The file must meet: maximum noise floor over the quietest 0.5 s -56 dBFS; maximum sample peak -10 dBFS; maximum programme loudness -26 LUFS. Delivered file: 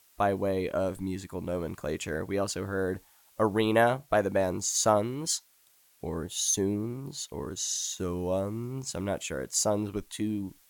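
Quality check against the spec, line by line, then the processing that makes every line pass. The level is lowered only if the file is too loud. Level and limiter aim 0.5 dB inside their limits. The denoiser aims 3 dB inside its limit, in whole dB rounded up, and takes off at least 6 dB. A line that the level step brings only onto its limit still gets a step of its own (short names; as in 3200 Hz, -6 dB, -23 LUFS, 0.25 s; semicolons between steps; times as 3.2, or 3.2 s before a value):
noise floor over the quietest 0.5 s -64 dBFS: OK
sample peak -10.5 dBFS: OK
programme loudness -30.0 LUFS: OK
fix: none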